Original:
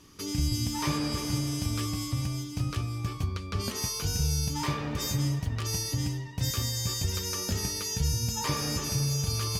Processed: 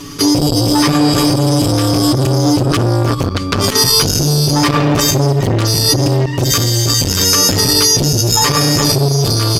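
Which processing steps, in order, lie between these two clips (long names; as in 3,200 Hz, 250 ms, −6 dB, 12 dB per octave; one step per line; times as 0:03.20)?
parametric band 280 Hz +2.5 dB 0.29 octaves
comb filter 7 ms, depth 93%
output level in coarse steps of 11 dB
boost into a limiter +25.5 dB
saturating transformer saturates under 430 Hz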